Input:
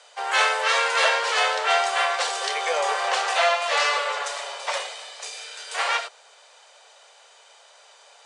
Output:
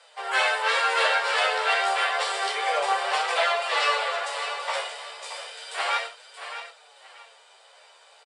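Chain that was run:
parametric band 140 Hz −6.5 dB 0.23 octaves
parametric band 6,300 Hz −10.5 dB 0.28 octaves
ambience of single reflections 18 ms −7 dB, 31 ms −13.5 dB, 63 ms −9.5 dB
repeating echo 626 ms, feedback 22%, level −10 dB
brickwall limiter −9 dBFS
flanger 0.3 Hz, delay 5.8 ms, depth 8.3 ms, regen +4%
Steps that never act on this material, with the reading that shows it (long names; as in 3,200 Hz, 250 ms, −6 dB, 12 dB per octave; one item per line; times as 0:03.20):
parametric band 140 Hz: nothing at its input below 380 Hz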